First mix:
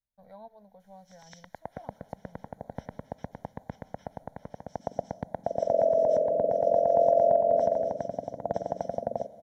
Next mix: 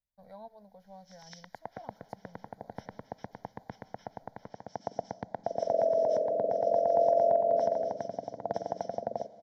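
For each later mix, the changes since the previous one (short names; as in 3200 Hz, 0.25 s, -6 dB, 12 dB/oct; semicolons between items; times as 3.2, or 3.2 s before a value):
background: add speaker cabinet 130–6200 Hz, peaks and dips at 160 Hz -7 dB, 250 Hz -5 dB, 570 Hz -6 dB; master: add bell 4900 Hz +12 dB 0.25 oct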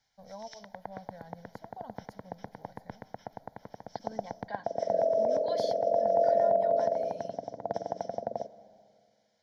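first voice: send on; second voice: unmuted; background: entry -0.80 s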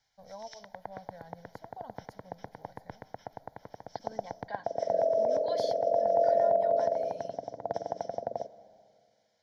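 master: add bell 210 Hz -5.5 dB 0.57 oct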